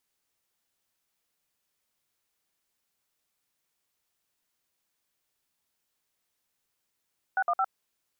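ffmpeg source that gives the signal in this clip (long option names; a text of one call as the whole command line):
ffmpeg -f lavfi -i "aevalsrc='0.0531*clip(min(mod(t,0.11),0.055-mod(t,0.11))/0.002,0,1)*(eq(floor(t/0.11),0)*(sin(2*PI*770*mod(t,0.11))+sin(2*PI*1477*mod(t,0.11)))+eq(floor(t/0.11),1)*(sin(2*PI*697*mod(t,0.11))+sin(2*PI*1209*mod(t,0.11)))+eq(floor(t/0.11),2)*(sin(2*PI*770*mod(t,0.11))+sin(2*PI*1336*mod(t,0.11))))':duration=0.33:sample_rate=44100" out.wav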